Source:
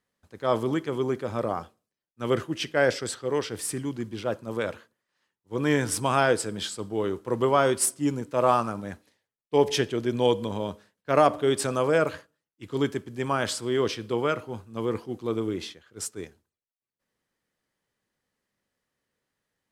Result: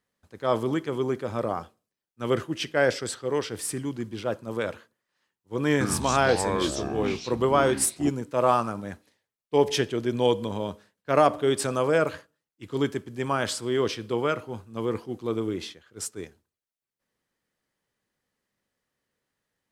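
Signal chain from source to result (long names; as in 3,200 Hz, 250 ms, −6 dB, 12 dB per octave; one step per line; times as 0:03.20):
0:05.72–0:08.09: delay with pitch and tempo change per echo 85 ms, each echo −6 semitones, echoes 2, each echo −6 dB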